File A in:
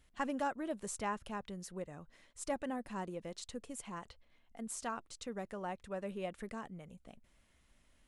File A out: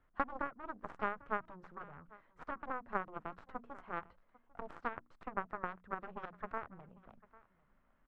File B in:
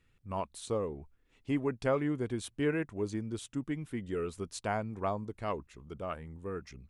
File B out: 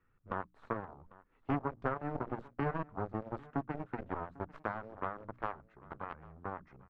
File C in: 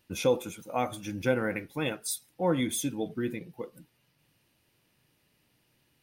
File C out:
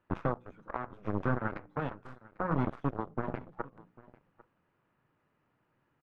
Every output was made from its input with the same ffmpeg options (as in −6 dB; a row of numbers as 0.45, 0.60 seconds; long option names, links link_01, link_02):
-filter_complex "[0:a]equalizer=frequency=61:width_type=o:width=0.43:gain=-11.5,bandreject=frequency=60:width_type=h:width=6,bandreject=frequency=120:width_type=h:width=6,bandreject=frequency=180:width_type=h:width=6,bandreject=frequency=240:width_type=h:width=6,bandreject=frequency=300:width_type=h:width=6,acrossover=split=190[link_01][link_02];[link_02]acompressor=threshold=-42dB:ratio=12[link_03];[link_01][link_03]amix=inputs=2:normalize=0,acrusher=bits=7:mode=log:mix=0:aa=0.000001,aeval=exprs='0.0531*(cos(1*acos(clip(val(0)/0.0531,-1,1)))-cos(1*PI/2))+0.0237*(cos(2*acos(clip(val(0)/0.0531,-1,1)))-cos(2*PI/2))+0.00266*(cos(3*acos(clip(val(0)/0.0531,-1,1)))-cos(3*PI/2))+0.00841*(cos(7*acos(clip(val(0)/0.0531,-1,1)))-cos(7*PI/2))':channel_layout=same,asoftclip=type=hard:threshold=-29.5dB,lowpass=frequency=1300:width_type=q:width=2.3,asplit=2[link_04][link_05];[link_05]aecho=0:1:797:0.0841[link_06];[link_04][link_06]amix=inputs=2:normalize=0,volume=8.5dB"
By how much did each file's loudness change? −1.5, −4.5, −5.0 LU